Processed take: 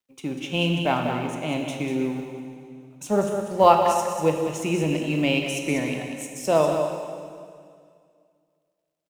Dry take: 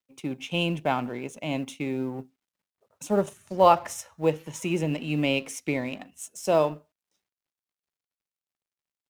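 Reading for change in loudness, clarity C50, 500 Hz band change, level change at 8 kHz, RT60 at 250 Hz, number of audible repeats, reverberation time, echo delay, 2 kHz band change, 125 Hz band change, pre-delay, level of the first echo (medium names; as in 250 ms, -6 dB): +3.5 dB, 3.0 dB, +3.5 dB, +3.5 dB, 2.3 s, 1, 2.2 s, 193 ms, +3.5 dB, +3.5 dB, 18 ms, -7.5 dB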